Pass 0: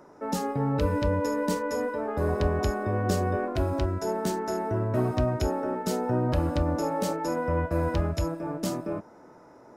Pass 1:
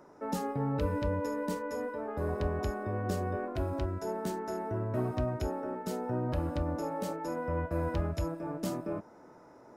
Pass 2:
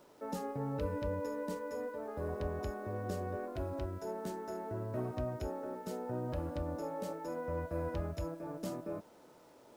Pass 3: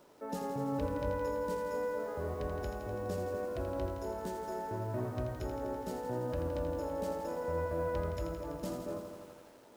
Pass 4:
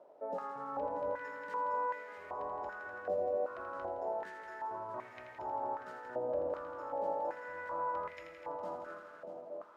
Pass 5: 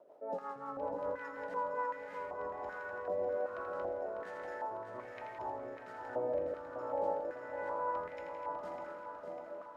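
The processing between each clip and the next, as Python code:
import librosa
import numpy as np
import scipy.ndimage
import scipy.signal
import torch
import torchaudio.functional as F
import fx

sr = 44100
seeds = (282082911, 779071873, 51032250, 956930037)

y1 = fx.dynamic_eq(x, sr, hz=5700.0, q=0.79, threshold_db=-50.0, ratio=4.0, max_db=-4)
y1 = fx.rider(y1, sr, range_db=10, speed_s=2.0)
y1 = y1 * librosa.db_to_amplitude(-6.5)
y2 = fx.peak_eq(y1, sr, hz=530.0, db=4.0, octaves=0.57)
y2 = fx.quant_dither(y2, sr, seeds[0], bits=10, dither='none')
y2 = y2 * librosa.db_to_amplitude(-6.5)
y3 = fx.echo_crushed(y2, sr, ms=83, feedback_pct=80, bits=10, wet_db=-7.0)
y4 = y3 + 10.0 ** (-8.5 / 20.0) * np.pad(y3, (int(638 * sr / 1000.0), 0))[:len(y3)]
y4 = fx.filter_held_bandpass(y4, sr, hz=2.6, low_hz=640.0, high_hz=2100.0)
y4 = y4 * librosa.db_to_amplitude(8.5)
y5 = fx.rotary_switch(y4, sr, hz=5.5, then_hz=1.2, switch_at_s=1.44)
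y5 = fx.echo_feedback(y5, sr, ms=599, feedback_pct=52, wet_db=-8)
y5 = y5 * librosa.db_to_amplitude(1.5)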